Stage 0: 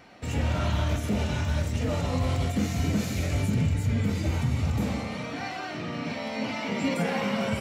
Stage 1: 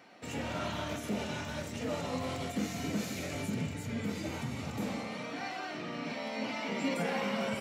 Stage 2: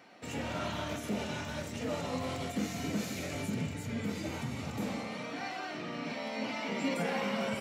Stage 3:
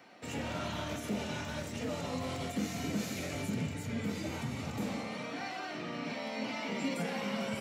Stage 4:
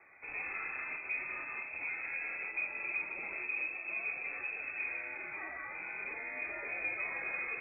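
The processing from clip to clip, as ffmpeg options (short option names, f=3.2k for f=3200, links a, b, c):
-af "highpass=200,volume=-4.5dB"
-af anull
-filter_complex "[0:a]acrossover=split=270|3000[a][b][c];[b]acompressor=threshold=-36dB:ratio=6[d];[a][d][c]amix=inputs=3:normalize=0"
-af "lowpass=f=2.3k:t=q:w=0.5098,lowpass=f=2.3k:t=q:w=0.6013,lowpass=f=2.3k:t=q:w=0.9,lowpass=f=2.3k:t=q:w=2.563,afreqshift=-2700,volume=-2.5dB"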